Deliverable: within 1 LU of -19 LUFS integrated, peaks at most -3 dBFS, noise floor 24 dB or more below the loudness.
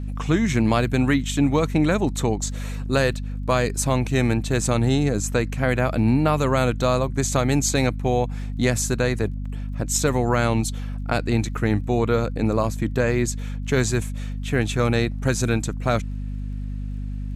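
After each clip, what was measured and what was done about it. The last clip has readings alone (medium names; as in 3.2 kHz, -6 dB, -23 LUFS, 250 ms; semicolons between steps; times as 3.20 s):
tick rate 25 per s; hum 50 Hz; highest harmonic 250 Hz; hum level -26 dBFS; loudness -22.5 LUFS; peak level -6.5 dBFS; loudness target -19.0 LUFS
-> de-click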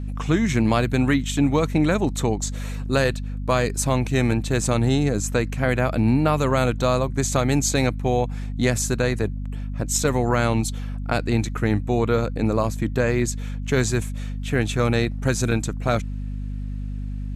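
tick rate 0 per s; hum 50 Hz; highest harmonic 250 Hz; hum level -26 dBFS
-> hum notches 50/100/150/200/250 Hz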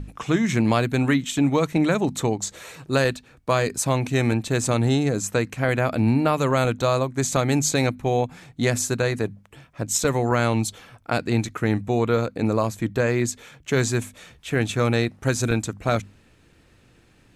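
hum not found; loudness -23.0 LUFS; peak level -7.5 dBFS; loudness target -19.0 LUFS
-> trim +4 dB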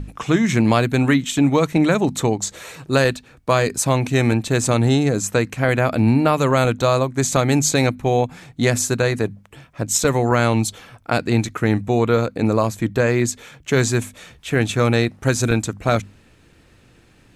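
loudness -19.0 LUFS; peak level -3.5 dBFS; noise floor -53 dBFS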